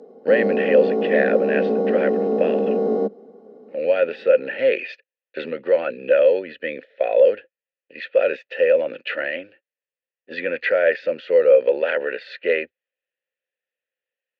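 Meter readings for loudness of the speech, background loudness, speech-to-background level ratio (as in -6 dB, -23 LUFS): -20.5 LUFS, -21.5 LUFS, 1.0 dB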